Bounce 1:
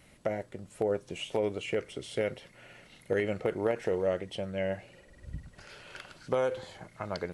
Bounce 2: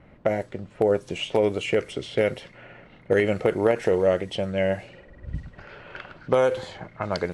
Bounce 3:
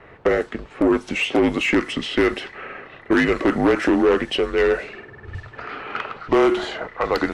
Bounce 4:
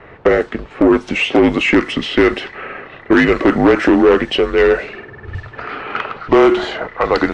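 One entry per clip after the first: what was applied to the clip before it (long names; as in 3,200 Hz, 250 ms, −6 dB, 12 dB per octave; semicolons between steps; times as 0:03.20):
low-pass that shuts in the quiet parts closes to 1,300 Hz, open at −30 dBFS; level +8.5 dB
frequency shifter −150 Hz; mid-hump overdrive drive 21 dB, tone 2,400 Hz, clips at −7.5 dBFS
high-frequency loss of the air 66 metres; level +6.5 dB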